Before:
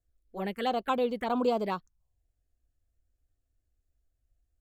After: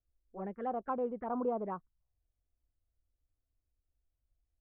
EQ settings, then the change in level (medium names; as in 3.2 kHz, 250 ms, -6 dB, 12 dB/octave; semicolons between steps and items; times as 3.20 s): low-pass 1.4 kHz 24 dB/octave; -6.5 dB